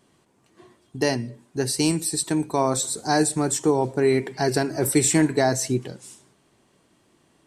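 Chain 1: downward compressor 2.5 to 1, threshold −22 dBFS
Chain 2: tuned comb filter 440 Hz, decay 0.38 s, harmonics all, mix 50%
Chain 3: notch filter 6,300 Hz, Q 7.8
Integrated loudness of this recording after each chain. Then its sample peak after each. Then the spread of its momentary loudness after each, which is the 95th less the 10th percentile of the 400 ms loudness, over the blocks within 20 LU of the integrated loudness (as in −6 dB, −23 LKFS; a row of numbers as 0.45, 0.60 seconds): −26.0, −28.5, −23.0 LKFS; −10.5, −13.0, −8.0 dBFS; 8, 9, 9 LU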